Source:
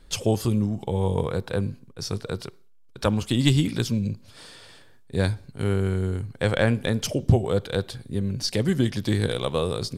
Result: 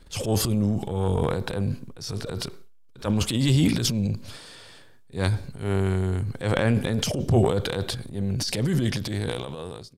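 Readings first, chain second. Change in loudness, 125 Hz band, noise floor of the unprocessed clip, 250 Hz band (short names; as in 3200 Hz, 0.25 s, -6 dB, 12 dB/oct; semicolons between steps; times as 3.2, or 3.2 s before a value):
0.0 dB, 0.0 dB, -51 dBFS, -0.5 dB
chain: ending faded out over 1.45 s; transient shaper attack -9 dB, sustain +10 dB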